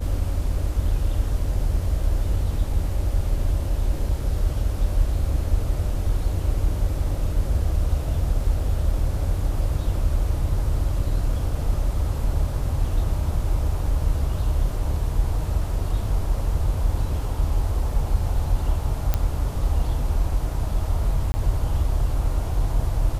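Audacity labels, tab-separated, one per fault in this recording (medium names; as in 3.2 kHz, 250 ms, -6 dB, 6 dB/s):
19.140000	19.140000	pop -8 dBFS
21.320000	21.340000	dropout 20 ms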